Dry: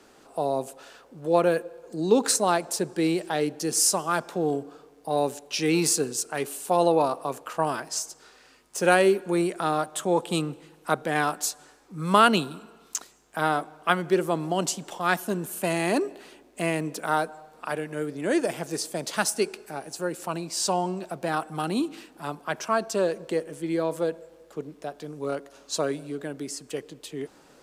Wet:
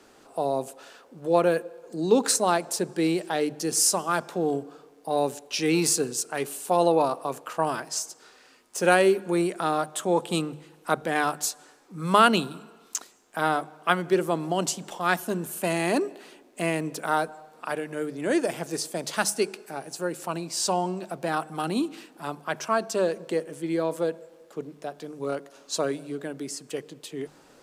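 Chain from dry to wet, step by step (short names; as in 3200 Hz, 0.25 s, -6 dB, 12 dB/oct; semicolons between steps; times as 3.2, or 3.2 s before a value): notches 50/100/150/200 Hz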